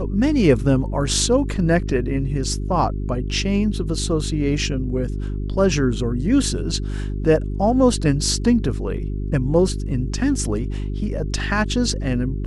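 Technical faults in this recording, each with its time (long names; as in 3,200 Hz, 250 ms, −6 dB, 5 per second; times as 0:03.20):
mains hum 50 Hz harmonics 8 −25 dBFS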